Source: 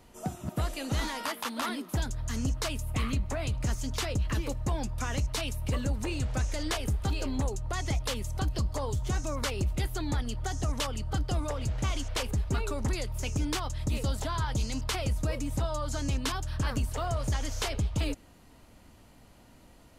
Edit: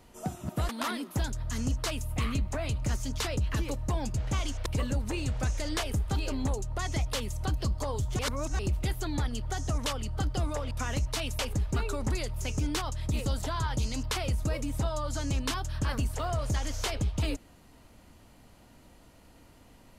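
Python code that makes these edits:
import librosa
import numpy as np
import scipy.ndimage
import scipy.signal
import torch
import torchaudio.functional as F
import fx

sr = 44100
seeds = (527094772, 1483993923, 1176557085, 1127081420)

y = fx.edit(x, sr, fx.cut(start_s=0.69, length_s=0.78),
    fx.swap(start_s=4.92, length_s=0.68, other_s=11.65, other_length_s=0.52),
    fx.reverse_span(start_s=9.13, length_s=0.4), tone=tone)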